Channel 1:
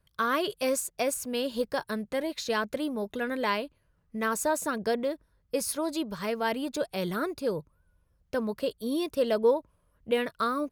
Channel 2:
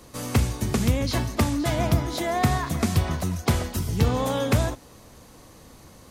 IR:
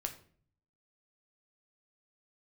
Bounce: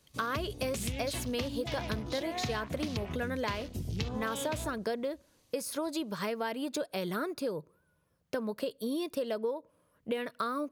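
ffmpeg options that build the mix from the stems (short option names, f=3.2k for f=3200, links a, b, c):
-filter_complex "[0:a]highpass=150,deesser=0.55,volume=2.5dB,asplit=2[a][b];[b]volume=-23dB[c];[1:a]highshelf=f=2k:t=q:w=1.5:g=7.5,afwtdn=0.0282,volume=-9dB,asplit=2[d][e];[e]volume=-10.5dB[f];[2:a]atrim=start_sample=2205[g];[c][f]amix=inputs=2:normalize=0[h];[h][g]afir=irnorm=-1:irlink=0[i];[a][d][i]amix=inputs=3:normalize=0,acompressor=threshold=-31dB:ratio=6"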